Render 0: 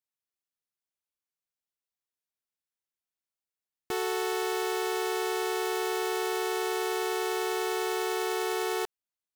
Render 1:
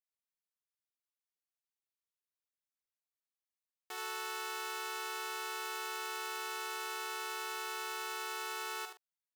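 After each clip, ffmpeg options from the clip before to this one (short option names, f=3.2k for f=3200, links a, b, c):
-filter_complex "[0:a]highpass=770,asplit=2[a][b];[b]adelay=44,volume=-10dB[c];[a][c]amix=inputs=2:normalize=0,asplit=2[d][e];[e]aecho=0:1:75:0.473[f];[d][f]amix=inputs=2:normalize=0,volume=-8.5dB"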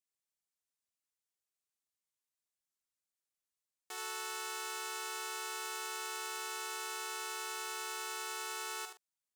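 -af "equalizer=f=7.8k:t=o:w=1.1:g=7,volume=-2dB"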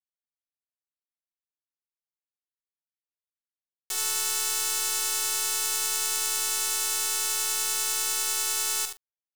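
-af "bass=f=250:g=-2,treble=f=4k:g=14,acontrast=53,aeval=exprs='sgn(val(0))*max(abs(val(0))-0.0133,0)':c=same,volume=1dB"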